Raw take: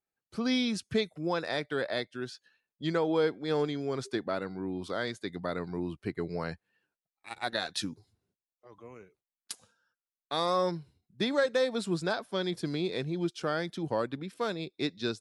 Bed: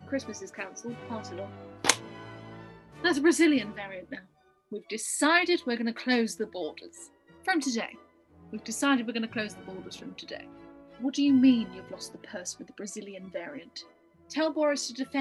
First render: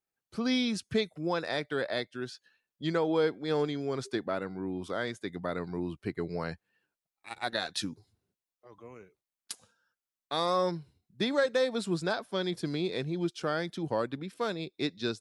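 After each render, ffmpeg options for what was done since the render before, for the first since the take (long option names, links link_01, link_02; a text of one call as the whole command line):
ffmpeg -i in.wav -filter_complex "[0:a]asettb=1/sr,asplit=3[link_01][link_02][link_03];[link_01]atrim=end=4.284[link_04];[link_02]atrim=start=4.28:end=5.54,asetpts=PTS-STARTPTS,afade=type=in:duration=0.004:curve=qsin,afade=type=out:start_time=1.256:duration=0.004:curve=qsin,equalizer=frequency=4300:width_type=o:width=0.3:gain=-8.5[link_05];[link_03]atrim=start=5.536[link_06];[link_04][link_05]acrossfade=duration=0.004:curve1=hsin:curve2=qsin[link_07];[link_07][link_06]acrossfade=duration=0.004:curve1=qsin:curve2=hsin" out.wav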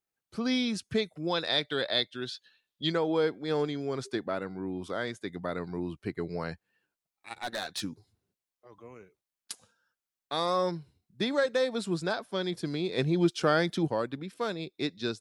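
ffmpeg -i in.wav -filter_complex "[0:a]asettb=1/sr,asplit=3[link_01][link_02][link_03];[link_01]atrim=end=1.274[link_04];[link_02]atrim=start=1.27:end=2.92,asetpts=PTS-STARTPTS,afade=type=in:duration=0.004:curve=qsin,afade=type=out:start_time=1.646:duration=0.004:curve=qsin,equalizer=frequency=3600:width=2.2:gain=13[link_05];[link_03]atrim=start=2.916[link_06];[link_04][link_05]acrossfade=duration=0.004:curve1=hsin:curve2=qsin[link_07];[link_07][link_06]acrossfade=duration=0.004:curve1=qsin:curve2=hsin,asettb=1/sr,asplit=3[link_08][link_09][link_10];[link_08]atrim=end=7.394[link_11];[link_09]atrim=start=7.39:end=7.82,asetpts=PTS-STARTPTS,afade=type=in:duration=0.004:curve=qsin,afade=type=out:start_time=0.426:duration=0.004:curve=qsin,asoftclip=type=hard:threshold=-29dB[link_12];[link_10]atrim=start=7.816[link_13];[link_11][link_12]acrossfade=duration=0.004:curve1=hsin:curve2=qsin[link_14];[link_14][link_13]acrossfade=duration=0.004:curve1=qsin:curve2=hsin,asplit=3[link_15][link_16][link_17];[link_15]afade=type=out:start_time=12.97:duration=0.02[link_18];[link_16]acontrast=69,afade=type=in:start_time=12.97:duration=0.02,afade=type=out:start_time=13.86:duration=0.02[link_19];[link_17]afade=type=in:start_time=13.86:duration=0.02[link_20];[link_18][link_19][link_20]amix=inputs=3:normalize=0" out.wav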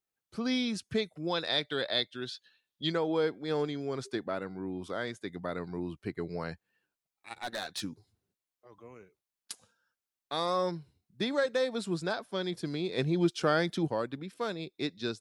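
ffmpeg -i in.wav -af "volume=-2dB" out.wav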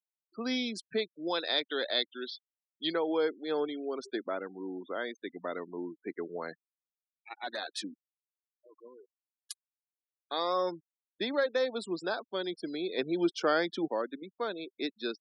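ffmpeg -i in.wav -af "highpass=frequency=250:width=0.5412,highpass=frequency=250:width=1.3066,afftfilt=real='re*gte(hypot(re,im),0.00891)':imag='im*gte(hypot(re,im),0.00891)':win_size=1024:overlap=0.75" out.wav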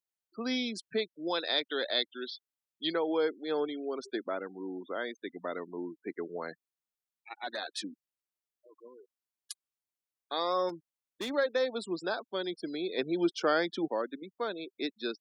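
ffmpeg -i in.wav -filter_complex "[0:a]asettb=1/sr,asplit=3[link_01][link_02][link_03];[link_01]atrim=end=10.694[link_04];[link_02]atrim=start=10.69:end=11.3,asetpts=PTS-STARTPTS,afade=type=in:duration=0.004:curve=qsin,afade=type=out:start_time=0.606:duration=0.004:curve=qsin,asoftclip=type=hard:threshold=-33dB[link_05];[link_03]atrim=start=11.296[link_06];[link_04][link_05]acrossfade=duration=0.004:curve1=hsin:curve2=qsin[link_07];[link_07][link_06]acrossfade=duration=0.004:curve1=qsin:curve2=hsin" out.wav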